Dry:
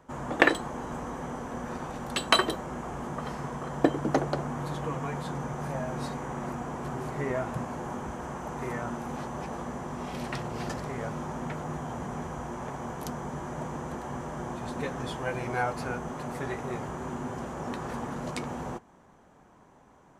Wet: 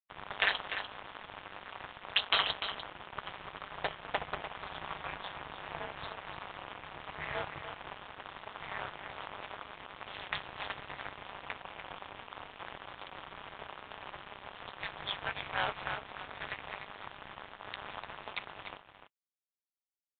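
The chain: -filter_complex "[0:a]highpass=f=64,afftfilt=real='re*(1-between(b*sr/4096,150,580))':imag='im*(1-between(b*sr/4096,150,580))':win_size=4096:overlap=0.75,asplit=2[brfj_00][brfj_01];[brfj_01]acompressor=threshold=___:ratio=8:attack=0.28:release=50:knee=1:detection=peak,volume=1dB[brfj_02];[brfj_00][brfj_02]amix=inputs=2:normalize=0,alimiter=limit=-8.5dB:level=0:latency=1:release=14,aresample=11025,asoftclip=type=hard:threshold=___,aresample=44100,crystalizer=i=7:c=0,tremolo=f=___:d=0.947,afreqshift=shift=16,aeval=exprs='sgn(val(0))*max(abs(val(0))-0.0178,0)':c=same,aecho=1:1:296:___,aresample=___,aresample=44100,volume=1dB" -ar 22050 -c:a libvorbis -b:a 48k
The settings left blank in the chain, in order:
-46dB, -25dB, 200, 0.335, 8000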